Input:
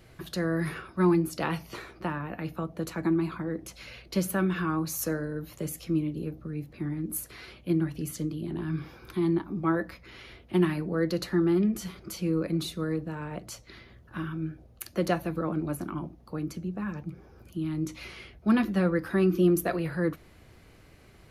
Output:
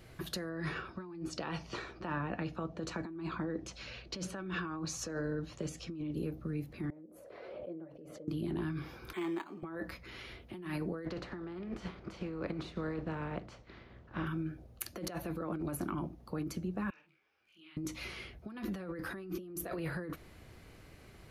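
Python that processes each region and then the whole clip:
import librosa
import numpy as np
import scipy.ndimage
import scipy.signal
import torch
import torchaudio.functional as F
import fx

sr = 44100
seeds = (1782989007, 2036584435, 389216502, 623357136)

y = fx.chain(x, sr, fx.lowpass(hz=6900.0, slope=24),
    fx.notch(hz=2100.0, q=12.0), at=(0.49, 6.13))
y = fx.chain(y, sr, fx.bandpass_q(hz=560.0, q=6.9),
    fx.pre_swell(db_per_s=27.0), at=(6.9, 8.28))
y = fx.chain(y, sr, fx.highpass(hz=520.0, slope=12),
    fx.peak_eq(hz=2700.0, db=9.5, octaves=0.95),
    fx.resample_linear(factor=8), at=(9.13, 9.63))
y = fx.spec_flatten(y, sr, power=0.65, at=(11.04, 14.26), fade=0.02)
y = fx.spacing_loss(y, sr, db_at_10k=33, at=(11.04, 14.26), fade=0.02)
y = fx.chain(y, sr, fx.bandpass_q(hz=2700.0, q=2.5),
    fx.doubler(ms=47.0, db=-6.0),
    fx.detune_double(cents=52), at=(16.9, 17.77))
y = fx.dynamic_eq(y, sr, hz=170.0, q=1.3, threshold_db=-36.0, ratio=4.0, max_db=-4)
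y = fx.over_compress(y, sr, threshold_db=-34.0, ratio=-1.0)
y = y * 10.0 ** (-4.5 / 20.0)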